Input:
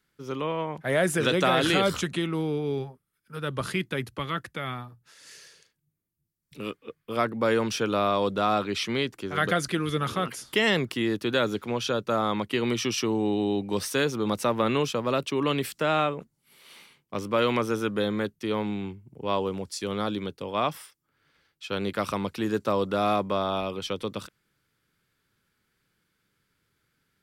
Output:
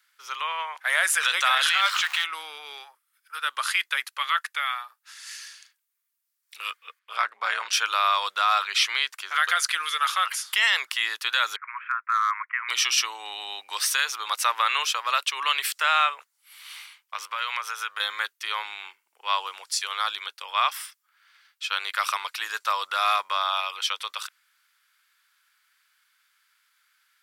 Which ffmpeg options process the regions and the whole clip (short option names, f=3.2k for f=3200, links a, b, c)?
-filter_complex "[0:a]asettb=1/sr,asplit=3[a][b][c];[a]atrim=end=1.694[d];[b]atrim=start=1.69:end=2.24,asetpts=PTS-STARTPTS,afade=t=in:d=0.004:c=qsin,afade=t=out:st=0.546:d=0.004:c=qsin,aeval=exprs='val(0)+0.5*0.0282*sgn(val(0))':c=same,highpass=730,acrossover=split=4600[e][f];[f]acompressor=threshold=-49dB:ratio=4:attack=1:release=60[g];[e][g]amix=inputs=2:normalize=0[h];[c]atrim=start=2.236[i];[d][h]acrossfade=d=0.004:c1=hsin:c2=qsin[j];[j][i]acrossfade=d=0.004:c1=qsin:c2=hsin,asettb=1/sr,asplit=3[k][l][m];[k]atrim=end=6.994[n];[l]atrim=start=6.99:end=7.73,asetpts=PTS-STARTPTS,afade=t=in:d=0.004:c=qsin,afade=t=out:st=0.736:d=0.004:c=qsin,lowpass=10k,highshelf=f=5.5k:g=-6.5,tremolo=f=190:d=0.71[o];[m]atrim=start=7.726[p];[n][o]acrossfade=d=0.004:c1=hsin:c2=qsin[q];[q][p]acrossfade=d=0.004:c1=qsin:c2=hsin,asettb=1/sr,asplit=3[r][s][t];[r]atrim=end=11.564[u];[s]atrim=start=11.56:end=12.69,asetpts=PTS-STARTPTS,afade=t=in:d=0.004:c=qsin,afade=t=out:st=1.126:d=0.004:c=qsin,asuperpass=centerf=1500:order=12:qfactor=1.2,asoftclip=type=hard:threshold=-23.5dB[v];[t]atrim=start=12.686[w];[u][v]acrossfade=d=0.004:c1=hsin:c2=qsin[x];[x][w]acrossfade=d=0.004:c1=qsin:c2=hsin,asettb=1/sr,asplit=3[y][z][aa];[y]atrim=end=17.144[ab];[z]atrim=start=17.14:end=18,asetpts=PTS-STARTPTS,afade=t=in:d=0.004:c=qsin,afade=t=out:st=0.856:d=0.004:c=qsin,bass=f=250:g=-13,treble=f=4k:g=-3,bandreject=f=320:w=6,acompressor=threshold=-30dB:ratio=4:attack=3.2:release=140:knee=1:detection=peak[ac];[aa]atrim=start=17.996[ad];[ab][ac]acrossfade=d=0.004:c1=hsin:c2=qsin[ae];[ae][ad]acrossfade=d=0.004:c1=qsin:c2=hsin,highpass=f=1.1k:w=0.5412,highpass=f=1.1k:w=1.3066,alimiter=level_in=18dB:limit=-1dB:release=50:level=0:latency=1,volume=-9dB"